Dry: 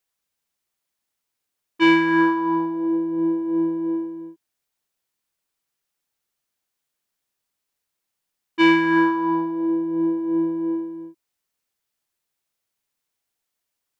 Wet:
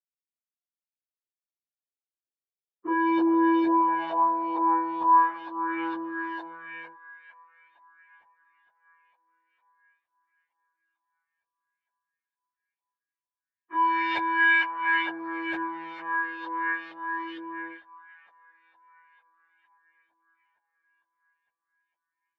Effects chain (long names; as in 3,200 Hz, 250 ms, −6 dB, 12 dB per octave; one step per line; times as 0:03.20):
noise gate −21 dBFS, range −8 dB
dynamic equaliser 2,800 Hz, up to −4 dB, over −41 dBFS, Q 7.3
in parallel at +1.5 dB: downward compressor 20 to 1, threshold −25 dBFS, peak gain reduction 13.5 dB
on the sum: leveller curve on the samples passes 5
on a send: delay with a band-pass on its return 478 ms, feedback 52%, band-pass 1,500 Hz, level −16.5 dB
on the sum: band-pass filter sweep 230 Hz → 1,800 Hz, 0:00.56–0:04.25
chorus effect 0.34 Hz, delay 16 ms, depth 4.1 ms
auto-filter low-pass saw up 3.5 Hz 710–3,600 Hz
time stretch by phase vocoder 1.6×